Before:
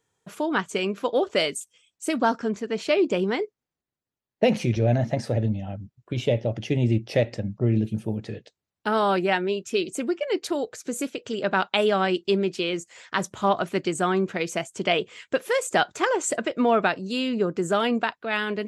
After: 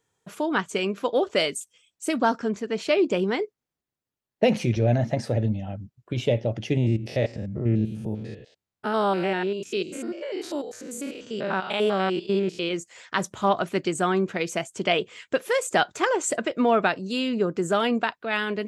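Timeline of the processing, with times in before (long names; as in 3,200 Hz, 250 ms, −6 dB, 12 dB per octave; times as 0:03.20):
0:06.77–0:12.71: spectrum averaged block by block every 100 ms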